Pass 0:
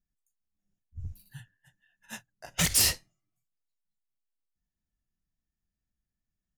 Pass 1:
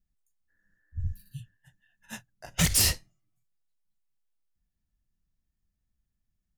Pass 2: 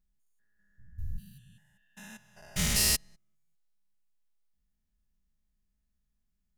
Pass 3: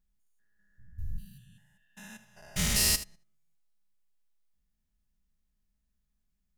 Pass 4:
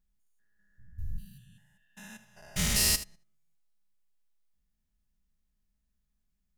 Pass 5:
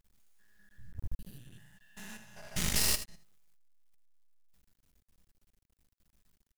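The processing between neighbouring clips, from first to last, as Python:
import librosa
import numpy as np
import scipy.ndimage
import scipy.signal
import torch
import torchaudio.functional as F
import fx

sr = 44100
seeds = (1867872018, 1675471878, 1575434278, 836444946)

y1 = fx.spec_repair(x, sr, seeds[0], start_s=0.52, length_s=0.94, low_hz=290.0, high_hz=2300.0, source='after')
y1 = fx.low_shelf(y1, sr, hz=180.0, db=8.5)
y2 = fx.spec_steps(y1, sr, hold_ms=200)
y2 = y2 + 0.58 * np.pad(y2, (int(4.8 * sr / 1000.0), 0))[:len(y2)]
y3 = y2 + 10.0 ** (-14.0 / 20.0) * np.pad(y2, (int(77 * sr / 1000.0), 0))[:len(y2)]
y4 = y3
y5 = fx.law_mismatch(y4, sr, coded='mu')
y5 = np.maximum(y5, 0.0)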